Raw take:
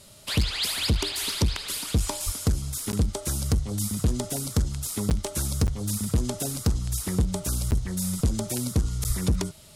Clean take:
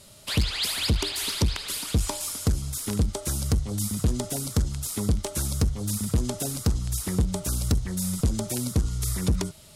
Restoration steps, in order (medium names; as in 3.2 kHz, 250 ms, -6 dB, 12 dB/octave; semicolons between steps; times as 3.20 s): 2.25–2.37 s: high-pass 140 Hz 24 dB/octave; 9.07–9.19 s: high-pass 140 Hz 24 dB/octave; interpolate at 2.92/5.10/5.67/7.71/9.04 s, 9.4 ms